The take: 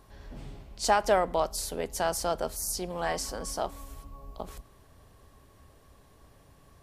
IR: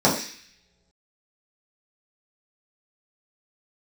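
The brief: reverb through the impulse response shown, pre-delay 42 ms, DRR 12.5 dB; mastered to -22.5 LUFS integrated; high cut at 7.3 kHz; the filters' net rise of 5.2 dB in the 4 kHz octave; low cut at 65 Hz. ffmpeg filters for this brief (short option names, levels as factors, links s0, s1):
-filter_complex "[0:a]highpass=65,lowpass=7300,equalizer=f=4000:t=o:g=7.5,asplit=2[s0][s1];[1:a]atrim=start_sample=2205,adelay=42[s2];[s1][s2]afir=irnorm=-1:irlink=0,volume=0.0251[s3];[s0][s3]amix=inputs=2:normalize=0,volume=2"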